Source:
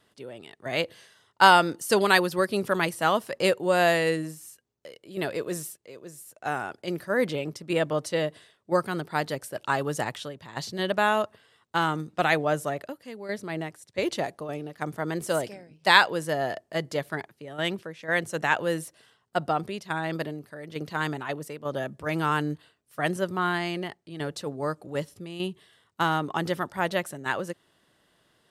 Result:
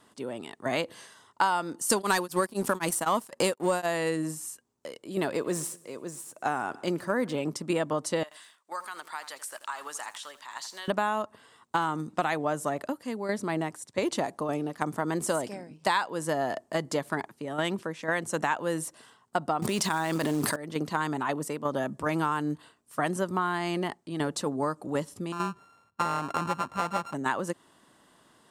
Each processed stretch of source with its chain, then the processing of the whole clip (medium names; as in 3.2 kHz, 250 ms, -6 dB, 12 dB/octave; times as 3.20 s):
1.90–3.86 s: treble shelf 6.1 kHz +9 dB + waveshaping leveller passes 2 + tremolo of two beating tones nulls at 3.9 Hz
5.20–7.40 s: median filter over 3 samples + feedback delay 115 ms, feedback 49%, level -24 dB
8.23–10.88 s: high-pass 1.2 kHz + compression 3:1, threshold -42 dBFS + bit-crushed delay 83 ms, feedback 35%, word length 9-bit, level -12 dB
19.62–20.56 s: treble shelf 2.1 kHz +6.5 dB + short-mantissa float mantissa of 2-bit + level flattener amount 100%
25.32–27.14 s: sorted samples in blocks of 32 samples + low-pass 1.5 kHz 6 dB/octave + peaking EQ 310 Hz -6.5 dB 1.4 oct
whole clip: graphic EQ 250/1000/8000 Hz +9/+10/+9 dB; compression 5:1, threshold -25 dBFS